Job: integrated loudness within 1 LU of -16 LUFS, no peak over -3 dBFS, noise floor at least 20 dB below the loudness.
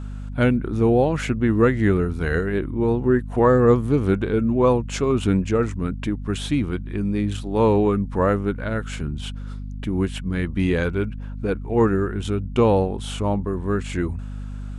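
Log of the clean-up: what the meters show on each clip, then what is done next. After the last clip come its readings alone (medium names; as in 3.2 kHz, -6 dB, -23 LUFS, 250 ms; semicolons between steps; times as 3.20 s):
hum 50 Hz; highest harmonic 250 Hz; hum level -29 dBFS; loudness -22.0 LUFS; peak level -5.0 dBFS; loudness target -16.0 LUFS
-> de-hum 50 Hz, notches 5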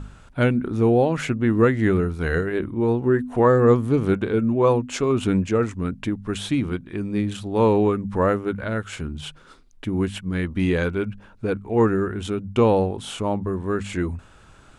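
hum not found; loudness -22.0 LUFS; peak level -5.5 dBFS; loudness target -16.0 LUFS
-> trim +6 dB; peak limiter -3 dBFS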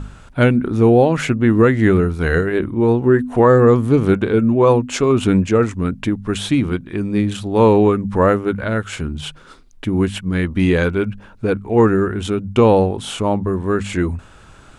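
loudness -16.5 LUFS; peak level -3.0 dBFS; noise floor -44 dBFS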